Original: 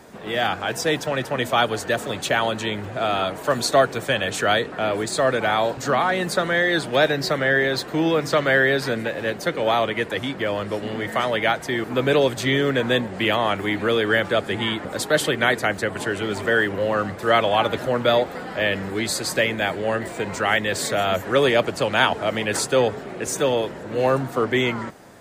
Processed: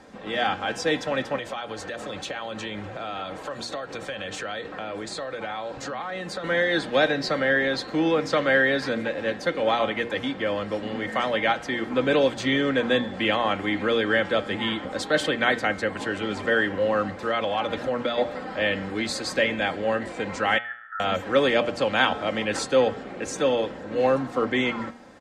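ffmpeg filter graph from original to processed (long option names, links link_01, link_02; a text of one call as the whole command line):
ffmpeg -i in.wav -filter_complex "[0:a]asettb=1/sr,asplit=3[link_01][link_02][link_03];[link_01]atrim=end=1.364[link_04];[link_02]atrim=start=1.36:end=6.44,asetpts=PTS-STARTPTS,afade=type=in:duration=0.004:curve=qsin,afade=type=out:start_time=5.076:duration=0.004:curve=qsin,acompressor=threshold=-25dB:ratio=12:attack=3.2:release=140:knee=1:detection=peak,bandreject=frequency=250:width=5.4[link_05];[link_03]atrim=start=6.436[link_06];[link_04][link_05]acrossfade=duration=0.004:curve1=hsin:curve2=qsin[link_07];[link_07][link_06]acrossfade=duration=0.004:curve1=qsin:curve2=hsin,asettb=1/sr,asplit=3[link_08][link_09][link_10];[link_08]atrim=end=17.114[link_11];[link_09]atrim=start=17.11:end=18.18,asetpts=PTS-STARTPTS,afade=type=in:duration=0.004:curve=qsin,afade=type=out:start_time=1.066:duration=0.004:curve=qsin,acompressor=threshold=-19dB:ratio=4:attack=3.2:release=140:knee=1:detection=peak,asoftclip=type=hard:threshold=-14dB[link_12];[link_10]atrim=start=18.176[link_13];[link_11][link_12]acrossfade=duration=0.004:curve1=hsin:curve2=qsin[link_14];[link_14][link_13]acrossfade=duration=0.004:curve1=qsin:curve2=hsin,asettb=1/sr,asplit=3[link_15][link_16][link_17];[link_15]atrim=end=20.584[link_18];[link_16]atrim=start=20.58:end=21,asetpts=PTS-STARTPTS,afade=type=in:duration=0.004:curve=qsin,afade=type=out:start_time=0.416:duration=0.004:curve=qsin,asuperpass=centerf=1500:order=12:qfactor=3.1,aecho=1:1:1.6:0.8,atrim=end_sample=18522[link_19];[link_17]atrim=start=20.996[link_20];[link_18][link_19]acrossfade=duration=0.004:curve1=hsin:curve2=qsin[link_21];[link_21][link_20]acrossfade=duration=0.004:curve1=qsin:curve2=hsin,lowpass=5900,aecho=1:1:3.8:0.45,bandreject=frequency=118.3:width_type=h:width=4,bandreject=frequency=236.6:width_type=h:width=4,bandreject=frequency=354.9:width_type=h:width=4,bandreject=frequency=473.2:width_type=h:width=4,bandreject=frequency=591.5:width_type=h:width=4,bandreject=frequency=709.8:width_type=h:width=4,bandreject=frequency=828.1:width_type=h:width=4,bandreject=frequency=946.4:width_type=h:width=4,bandreject=frequency=1064.7:width_type=h:width=4,bandreject=frequency=1183:width_type=h:width=4,bandreject=frequency=1301.3:width_type=h:width=4,bandreject=frequency=1419.6:width_type=h:width=4,bandreject=frequency=1537.9:width_type=h:width=4,bandreject=frequency=1656.2:width_type=h:width=4,bandreject=frequency=1774.5:width_type=h:width=4,bandreject=frequency=1892.8:width_type=h:width=4,bandreject=frequency=2011.1:width_type=h:width=4,bandreject=frequency=2129.4:width_type=h:width=4,bandreject=frequency=2247.7:width_type=h:width=4,bandreject=frequency=2366:width_type=h:width=4,bandreject=frequency=2484.3:width_type=h:width=4,bandreject=frequency=2602.6:width_type=h:width=4,bandreject=frequency=2720.9:width_type=h:width=4,bandreject=frequency=2839.2:width_type=h:width=4,bandreject=frequency=2957.5:width_type=h:width=4,bandreject=frequency=3075.8:width_type=h:width=4,bandreject=frequency=3194.1:width_type=h:width=4,bandreject=frequency=3312.4:width_type=h:width=4,bandreject=frequency=3430.7:width_type=h:width=4,bandreject=frequency=3549:width_type=h:width=4,bandreject=frequency=3667.3:width_type=h:width=4,bandreject=frequency=3785.6:width_type=h:width=4,bandreject=frequency=3903.9:width_type=h:width=4,bandreject=frequency=4022.2:width_type=h:width=4,bandreject=frequency=4140.5:width_type=h:width=4,bandreject=frequency=4258.8:width_type=h:width=4,bandreject=frequency=4377.1:width_type=h:width=4,bandreject=frequency=4495.4:width_type=h:width=4,volume=-3dB" out.wav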